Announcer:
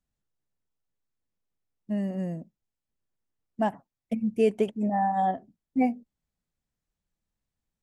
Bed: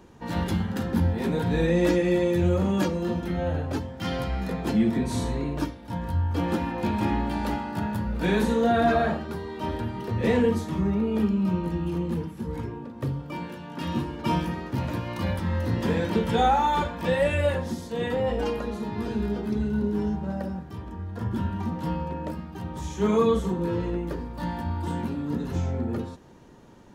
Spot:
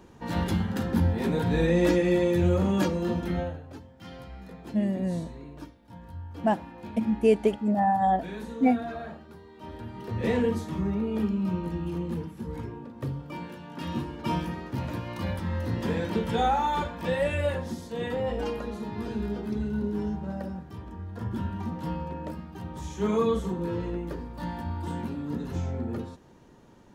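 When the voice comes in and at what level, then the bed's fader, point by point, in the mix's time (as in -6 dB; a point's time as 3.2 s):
2.85 s, +2.0 dB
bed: 3.39 s -0.5 dB
3.6 s -14.5 dB
9.53 s -14.5 dB
10.17 s -3.5 dB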